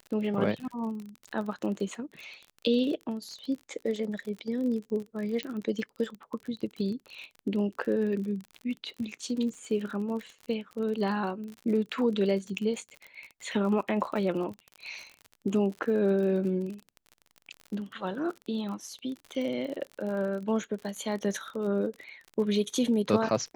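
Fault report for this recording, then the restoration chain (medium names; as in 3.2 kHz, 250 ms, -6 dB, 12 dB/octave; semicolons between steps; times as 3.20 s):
crackle 41 per s -36 dBFS
5.43 s: pop -19 dBFS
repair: de-click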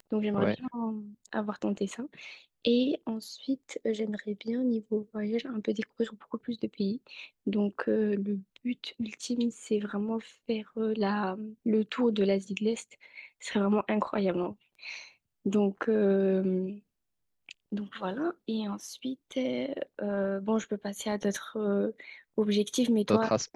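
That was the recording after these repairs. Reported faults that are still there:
nothing left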